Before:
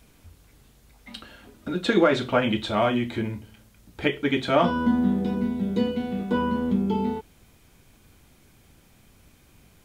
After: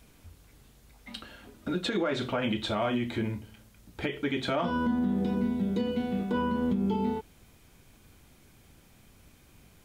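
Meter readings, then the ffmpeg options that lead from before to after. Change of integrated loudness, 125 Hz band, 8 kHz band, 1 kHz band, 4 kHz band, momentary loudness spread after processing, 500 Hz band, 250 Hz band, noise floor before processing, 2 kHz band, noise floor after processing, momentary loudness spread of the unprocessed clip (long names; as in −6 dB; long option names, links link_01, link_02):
−5.5 dB, −4.0 dB, can't be measured, −6.5 dB, −4.0 dB, 13 LU, −7.0 dB, −4.5 dB, −57 dBFS, −6.5 dB, −59 dBFS, 16 LU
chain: -af "alimiter=limit=-18.5dB:level=0:latency=1:release=115,volume=-1.5dB"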